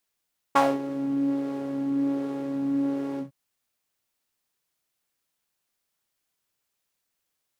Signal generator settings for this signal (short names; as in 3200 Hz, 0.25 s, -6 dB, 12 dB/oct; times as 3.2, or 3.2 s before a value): synth patch with filter wobble C#4, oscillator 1 saw, sub -13.5 dB, noise -1.5 dB, filter bandpass, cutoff 140 Hz, Q 2.6, filter envelope 3 oct, filter decay 0.19 s, filter sustain 40%, attack 12 ms, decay 0.22 s, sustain -14 dB, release 0.12 s, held 2.64 s, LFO 1.3 Hz, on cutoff 0.3 oct